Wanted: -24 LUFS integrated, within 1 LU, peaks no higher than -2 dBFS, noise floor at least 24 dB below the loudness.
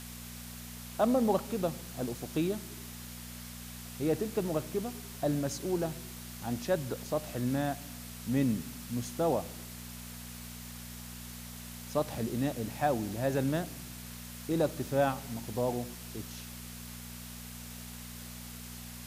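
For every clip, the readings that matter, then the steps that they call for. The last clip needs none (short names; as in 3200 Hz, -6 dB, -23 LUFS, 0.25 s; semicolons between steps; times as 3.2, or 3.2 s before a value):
hum 60 Hz; harmonics up to 240 Hz; hum level -45 dBFS; noise floor -45 dBFS; noise floor target -59 dBFS; loudness -35.0 LUFS; peak -16.0 dBFS; loudness target -24.0 LUFS
-> de-hum 60 Hz, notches 4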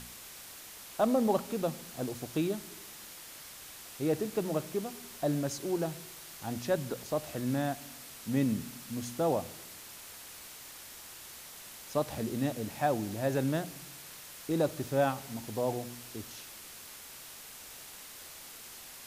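hum none; noise floor -49 dBFS; noise floor target -58 dBFS
-> noise print and reduce 9 dB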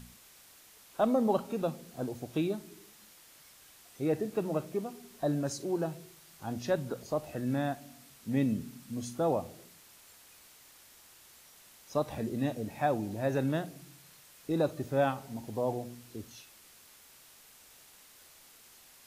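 noise floor -58 dBFS; loudness -33.5 LUFS; peak -16.5 dBFS; loudness target -24.0 LUFS
-> gain +9.5 dB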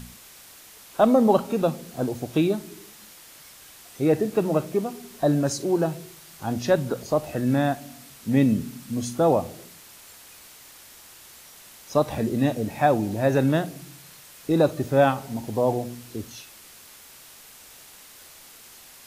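loudness -24.0 LUFS; peak -7.0 dBFS; noise floor -48 dBFS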